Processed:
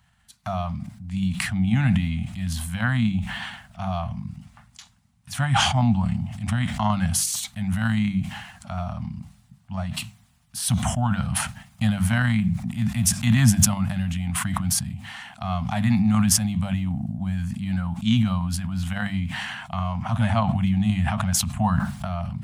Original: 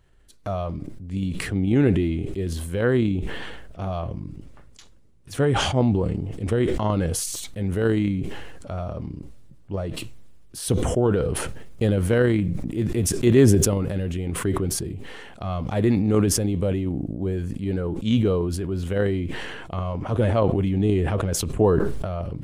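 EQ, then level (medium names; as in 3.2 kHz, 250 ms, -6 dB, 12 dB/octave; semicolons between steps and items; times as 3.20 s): high-pass 89 Hz; Chebyshev band-stop 220–730 Hz, order 3; hum notches 50/100/150/200 Hz; +4.5 dB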